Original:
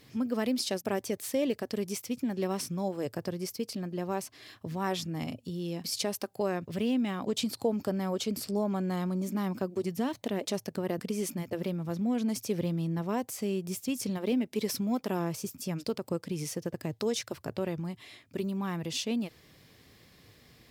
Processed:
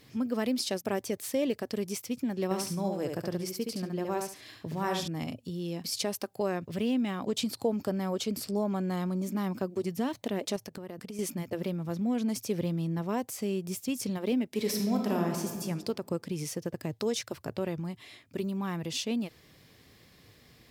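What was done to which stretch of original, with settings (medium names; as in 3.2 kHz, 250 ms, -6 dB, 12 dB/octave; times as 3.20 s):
2.44–5.08 s: feedback delay 70 ms, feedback 21%, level -4.5 dB
10.56–11.19 s: compression 4:1, threshold -38 dBFS
14.50–15.62 s: reverb throw, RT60 1.4 s, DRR 1.5 dB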